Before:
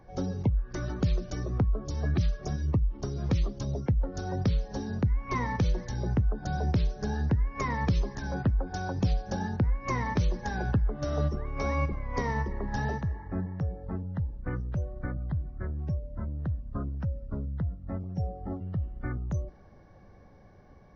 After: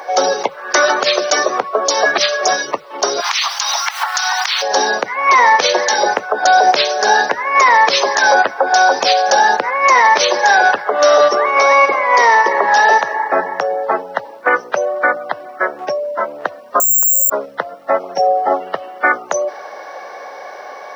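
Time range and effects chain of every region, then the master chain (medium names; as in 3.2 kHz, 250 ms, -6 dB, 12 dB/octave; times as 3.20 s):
3.20–4.61 s: spectral contrast reduction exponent 0.69 + steep high-pass 830 Hz 48 dB/octave + compression 12:1, threshold -44 dBFS
16.80–17.30 s: low-pass 1.1 kHz 6 dB/octave + careless resampling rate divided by 6×, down filtered, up zero stuff
whole clip: high-pass 570 Hz 24 dB/octave; loudness maximiser +33 dB; trim -1 dB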